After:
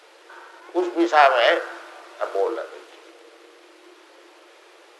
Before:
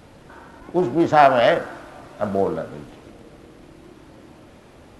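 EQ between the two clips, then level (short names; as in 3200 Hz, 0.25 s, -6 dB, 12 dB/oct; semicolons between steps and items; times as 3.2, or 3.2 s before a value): rippled Chebyshev high-pass 330 Hz, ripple 3 dB; bell 4000 Hz +8 dB 2.7 oct; -1.0 dB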